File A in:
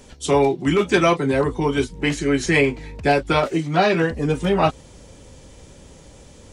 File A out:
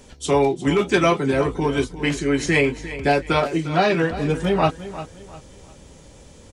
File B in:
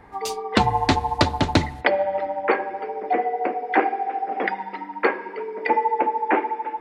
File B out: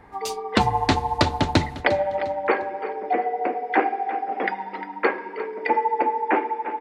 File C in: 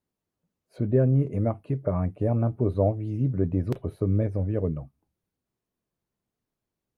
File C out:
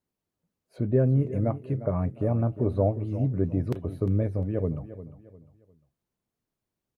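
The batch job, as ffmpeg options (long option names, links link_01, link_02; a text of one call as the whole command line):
ffmpeg -i in.wav -af "aecho=1:1:352|704|1056:0.2|0.0658|0.0217,volume=-1dB" out.wav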